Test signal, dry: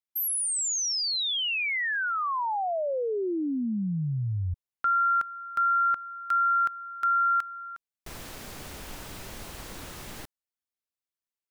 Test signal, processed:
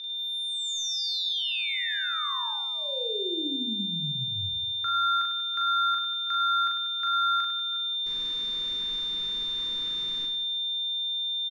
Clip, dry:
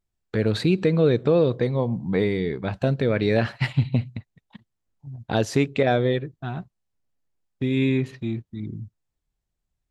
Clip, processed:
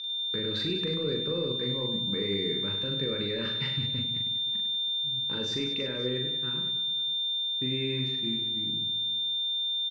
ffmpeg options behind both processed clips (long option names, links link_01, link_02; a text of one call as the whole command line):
ffmpeg -i in.wav -af "aeval=exprs='val(0)+0.0316*sin(2*PI*3600*n/s)':channel_layout=same,equalizer=frequency=62:width_type=o:width=1.4:gain=-10,bandreject=frequency=60:width_type=h:width=6,bandreject=frequency=120:width_type=h:width=6,bandreject=frequency=180:width_type=h:width=6,bandreject=frequency=240:width_type=h:width=6,alimiter=limit=-16.5dB:level=0:latency=1:release=29,areverse,acompressor=mode=upward:threshold=-29dB:ratio=2.5:release=537:knee=2.83:detection=peak,areverse,lowpass=frequency=6000:width=0.5412,lowpass=frequency=6000:width=1.3066,aeval=exprs='0.158*(cos(1*acos(clip(val(0)/0.158,-1,1)))-cos(1*PI/2))+0.00251*(cos(5*acos(clip(val(0)/0.158,-1,1)))-cos(5*PI/2))':channel_layout=same,asuperstop=centerf=710:order=4:qfactor=1.9,aecho=1:1:40|100|190|325|527.5:0.631|0.398|0.251|0.158|0.1,volume=-7dB" out.wav